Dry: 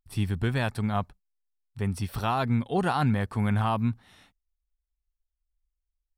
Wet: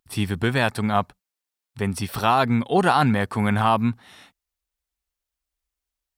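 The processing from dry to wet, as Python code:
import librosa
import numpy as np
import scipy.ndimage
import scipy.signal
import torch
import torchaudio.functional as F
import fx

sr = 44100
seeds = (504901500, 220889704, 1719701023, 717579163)

y = fx.highpass(x, sr, hz=250.0, slope=6)
y = F.gain(torch.from_numpy(y), 9.0).numpy()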